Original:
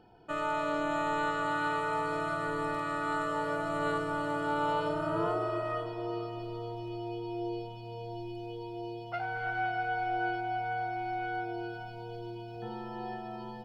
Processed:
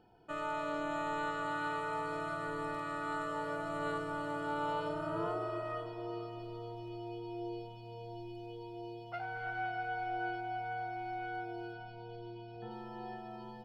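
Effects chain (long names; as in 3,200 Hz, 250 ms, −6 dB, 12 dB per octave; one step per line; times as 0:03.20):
0:11.73–0:12.71: low-pass filter 5,300 Hz 24 dB per octave
level −5.5 dB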